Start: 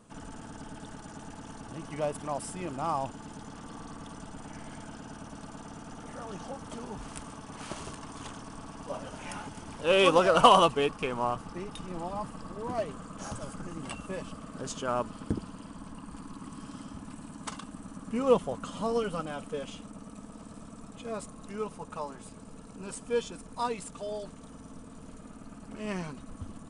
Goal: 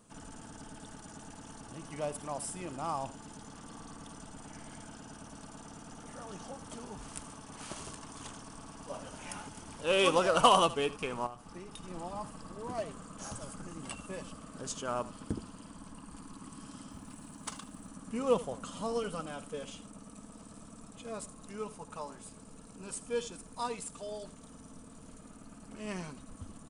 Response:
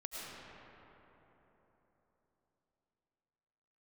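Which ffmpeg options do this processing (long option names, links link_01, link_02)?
-filter_complex "[0:a]highshelf=frequency=5400:gain=9,asettb=1/sr,asplit=3[link_01][link_02][link_03];[link_01]atrim=end=16.914[link_04];[link_02]atrim=start=16.91:end=17.88,asetpts=PTS-STARTPTS,afade=type=in:duration=0.004:curve=qsin,afade=type=out:start_time=0.966:duration=0.004:curve=qsin,acrusher=bits=7:mode=log:mix=0:aa=0.000001[link_05];[link_03]atrim=start=17.876[link_06];[link_04][link_05]acrossfade=duration=0.004:curve1=hsin:curve2=qsin[link_07];[link_07][link_06]acrossfade=duration=0.004:curve1=qsin:curve2=hsin,asplit=2[link_08][link_09];[link_09]aecho=0:1:80:0.141[link_10];[link_08][link_10]amix=inputs=2:normalize=0,asettb=1/sr,asplit=3[link_11][link_12][link_13];[link_11]atrim=end=11.264[link_14];[link_12]atrim=start=11.26:end=11.84,asetpts=PTS-STARTPTS,afade=type=in:duration=0.004:curve=qsin,afade=type=out:start_time=0.576:duration=0.004:curve=qsin,acompressor=threshold=-37dB:ratio=6[link_15];[link_13]atrim=start=11.836[link_16];[link_14][link_15]acrossfade=duration=0.004:curve1=hsin:curve2=qsin[link_17];[link_17][link_16]acrossfade=duration=0.004:curve1=qsin:curve2=hsin,volume=-5dB"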